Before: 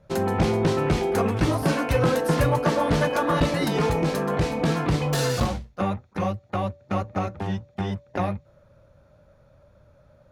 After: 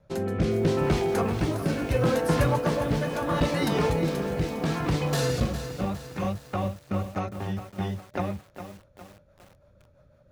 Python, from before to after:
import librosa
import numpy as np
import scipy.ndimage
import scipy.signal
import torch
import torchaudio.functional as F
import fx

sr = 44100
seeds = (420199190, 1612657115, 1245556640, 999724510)

y = fx.rotary_switch(x, sr, hz=0.75, then_hz=6.0, switch_at_s=6.79)
y = fx.echo_crushed(y, sr, ms=408, feedback_pct=55, bits=7, wet_db=-10)
y = y * 10.0 ** (-1.5 / 20.0)